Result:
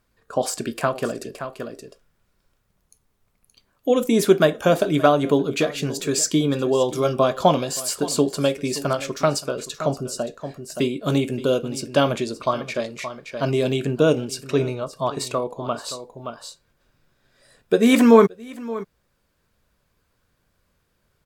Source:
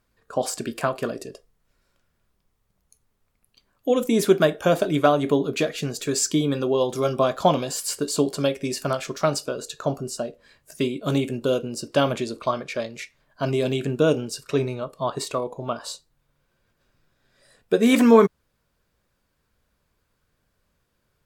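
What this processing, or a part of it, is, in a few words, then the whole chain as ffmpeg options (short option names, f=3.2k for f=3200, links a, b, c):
ducked delay: -filter_complex "[0:a]asplit=3[a][b][c];[b]adelay=573,volume=-6dB[d];[c]apad=whole_len=962790[e];[d][e]sidechaincompress=threshold=-29dB:ratio=16:attack=16:release=819[f];[a][f]amix=inputs=2:normalize=0,volume=2dB"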